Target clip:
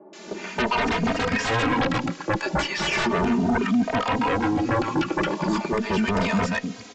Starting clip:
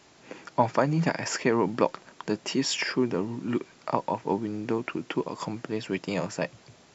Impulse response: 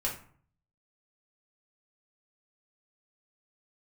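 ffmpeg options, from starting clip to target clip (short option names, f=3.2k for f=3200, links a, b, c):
-filter_complex "[0:a]lowshelf=f=160:t=q:w=3:g=-7,acrossover=split=210|830[a][b][c];[c]adelay=130[d];[a]adelay=250[e];[e][b][d]amix=inputs=3:normalize=0,aresample=16000,aeval=exprs='0.299*sin(PI/2*7.94*val(0)/0.299)':c=same,aresample=44100,acrossover=split=3500[f][g];[g]acompressor=threshold=-31dB:ratio=4:attack=1:release=60[h];[f][h]amix=inputs=2:normalize=0,asplit=2[i][j];[j]adelay=3,afreqshift=0.37[k];[i][k]amix=inputs=2:normalize=1,volume=-5dB"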